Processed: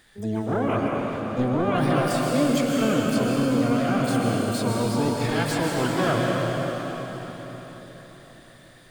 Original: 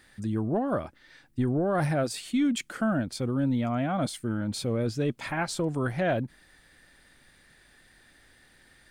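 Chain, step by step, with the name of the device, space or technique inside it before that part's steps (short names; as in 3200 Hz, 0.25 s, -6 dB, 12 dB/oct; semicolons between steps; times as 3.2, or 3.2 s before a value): shimmer-style reverb (harmoniser +12 st -5 dB; reverb RT60 4.6 s, pre-delay 0.115 s, DRR -2.5 dB)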